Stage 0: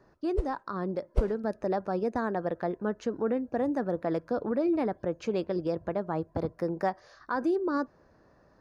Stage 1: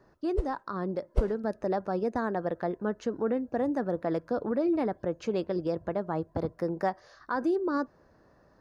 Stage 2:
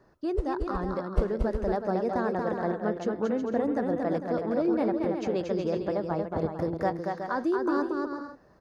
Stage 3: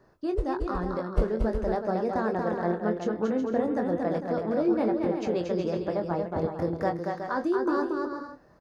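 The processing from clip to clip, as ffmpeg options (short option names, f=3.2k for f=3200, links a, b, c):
-af "bandreject=f=2.4k:w=21"
-af "aecho=1:1:230|368|450.8|500.5|530.3:0.631|0.398|0.251|0.158|0.1"
-filter_complex "[0:a]asplit=2[a][b];[b]adelay=23,volume=-7.5dB[c];[a][c]amix=inputs=2:normalize=0"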